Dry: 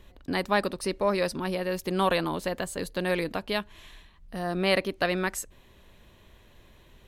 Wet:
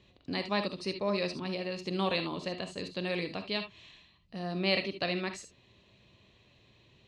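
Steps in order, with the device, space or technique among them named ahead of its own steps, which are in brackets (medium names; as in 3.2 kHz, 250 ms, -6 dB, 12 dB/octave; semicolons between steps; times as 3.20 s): car door speaker (cabinet simulation 82–6700 Hz, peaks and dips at 120 Hz +8 dB, 190 Hz +3 dB, 910 Hz -3 dB, 1.5 kHz -7 dB, 2.6 kHz +6 dB, 4.2 kHz +8 dB); gated-style reverb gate 90 ms rising, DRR 7.5 dB; trim -7 dB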